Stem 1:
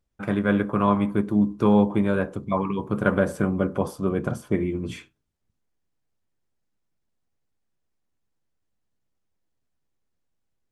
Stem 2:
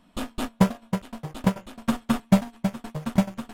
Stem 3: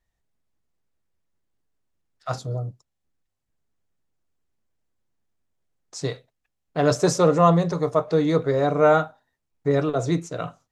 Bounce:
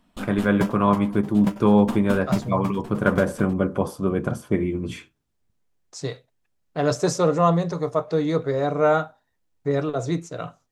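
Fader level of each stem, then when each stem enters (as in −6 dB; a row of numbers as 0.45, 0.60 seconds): +1.5, −5.0, −2.0 decibels; 0.00, 0.00, 0.00 seconds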